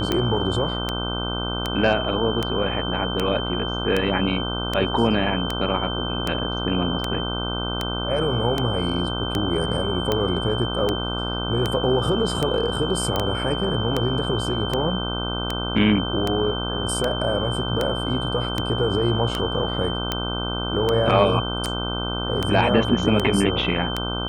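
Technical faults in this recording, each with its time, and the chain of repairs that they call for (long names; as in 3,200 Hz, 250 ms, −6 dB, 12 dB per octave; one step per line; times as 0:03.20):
mains buzz 60 Hz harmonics 26 −28 dBFS
scratch tick 78 rpm −8 dBFS
whistle 3,100 Hz −29 dBFS
0:13.16: click −9 dBFS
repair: click removal
notch filter 3,100 Hz, Q 30
hum removal 60 Hz, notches 26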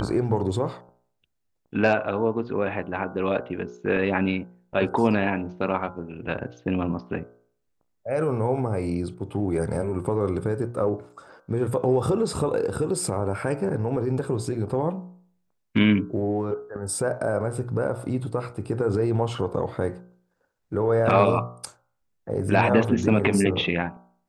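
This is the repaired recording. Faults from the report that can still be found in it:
none of them is left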